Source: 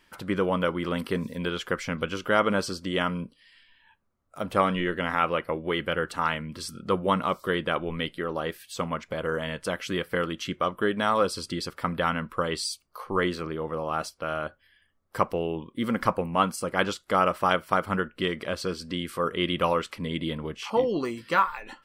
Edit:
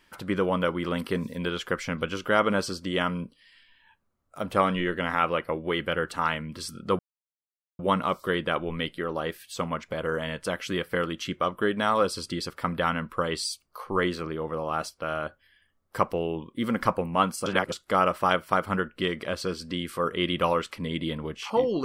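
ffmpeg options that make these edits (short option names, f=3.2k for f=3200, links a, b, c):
-filter_complex "[0:a]asplit=4[a][b][c][d];[a]atrim=end=6.99,asetpts=PTS-STARTPTS,afade=t=out:st=6.986:d=0.004:c=hsin,apad=pad_dur=0.8[e];[b]atrim=start=6.99:end=16.662,asetpts=PTS-STARTPTS,afade=t=in:d=0.004:c=hsin[f];[c]atrim=start=16.658:end=16.922,asetpts=PTS-STARTPTS,areverse[g];[d]atrim=start=16.918[h];[e][f]concat=n=2:v=0:a=1[i];[i][g]acrossfade=d=0.004:c1=hsin:c2=hsin[j];[j][h]acrossfade=d=0.004:c1=hsin:c2=hsin"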